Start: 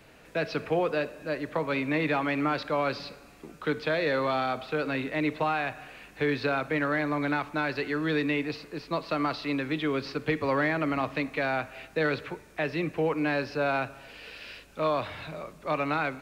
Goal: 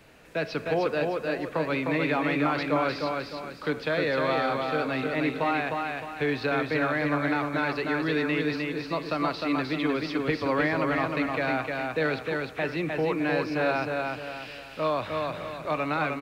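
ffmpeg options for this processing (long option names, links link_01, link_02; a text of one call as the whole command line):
ffmpeg -i in.wav -af "aecho=1:1:306|612|918|1224|1530:0.668|0.261|0.102|0.0396|0.0155" out.wav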